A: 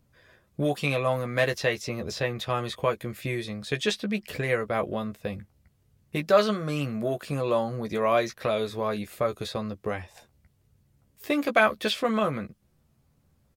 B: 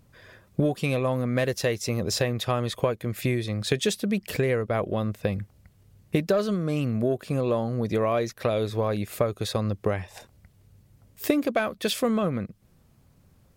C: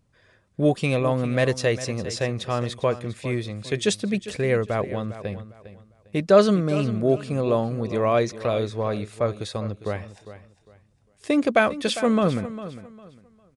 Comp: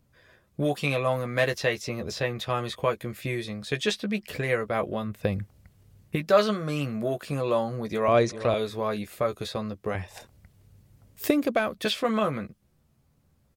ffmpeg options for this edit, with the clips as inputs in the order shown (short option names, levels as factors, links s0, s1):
-filter_complex "[1:a]asplit=2[s0][s1];[0:a]asplit=4[s2][s3][s4][s5];[s2]atrim=end=5.24[s6];[s0]atrim=start=5:end=6.29[s7];[s3]atrim=start=6.05:end=8.082[s8];[2:a]atrim=start=8.078:end=8.542[s9];[s4]atrim=start=8.538:end=9.952[s10];[s1]atrim=start=9.948:end=11.852[s11];[s5]atrim=start=11.848[s12];[s6][s7]acrossfade=d=0.24:c1=tri:c2=tri[s13];[s13][s8]acrossfade=d=0.24:c1=tri:c2=tri[s14];[s14][s9]acrossfade=d=0.004:c1=hsin:c2=hsin[s15];[s15][s10]acrossfade=d=0.004:c1=hsin:c2=hsin[s16];[s16][s11]acrossfade=d=0.004:c1=hsin:c2=hsin[s17];[s17][s12]acrossfade=d=0.004:c1=hsin:c2=hsin"